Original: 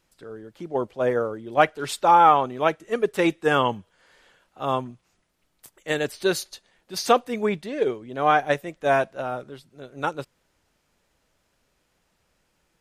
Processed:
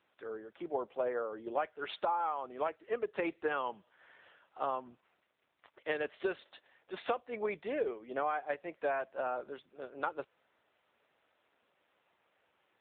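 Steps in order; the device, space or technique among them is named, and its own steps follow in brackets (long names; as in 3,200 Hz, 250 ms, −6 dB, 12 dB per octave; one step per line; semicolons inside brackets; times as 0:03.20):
voicemail (band-pass filter 410–3,100 Hz; downward compressor 10 to 1, threshold −30 dBFS, peak gain reduction 19 dB; AMR narrowband 7.95 kbit/s 8,000 Hz)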